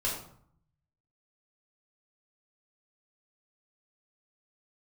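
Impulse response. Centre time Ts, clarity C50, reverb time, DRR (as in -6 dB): 36 ms, 5.0 dB, 0.60 s, -4.5 dB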